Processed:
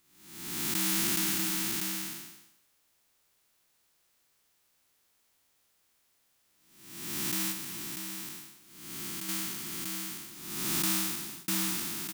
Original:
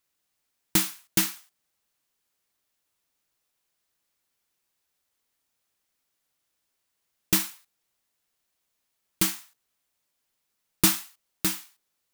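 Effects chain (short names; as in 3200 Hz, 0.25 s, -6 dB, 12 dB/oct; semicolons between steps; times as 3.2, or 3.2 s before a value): time blur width 0.55 s; echo 0.642 s -3.5 dB; 7.51–9.29 compressor, threshold -42 dBFS, peak gain reduction 6 dB; 10.92–11.48 fade out; gain +7 dB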